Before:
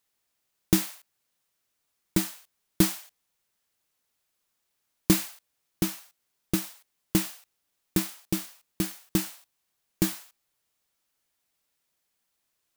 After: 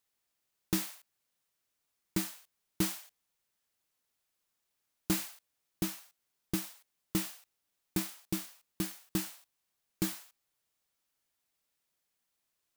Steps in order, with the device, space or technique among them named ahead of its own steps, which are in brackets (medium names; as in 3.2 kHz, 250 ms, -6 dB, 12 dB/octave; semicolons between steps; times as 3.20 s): saturation between pre-emphasis and de-emphasis (treble shelf 7.1 kHz +11 dB; saturation -14.5 dBFS, distortion -10 dB; treble shelf 7.1 kHz -11 dB); trim -4.5 dB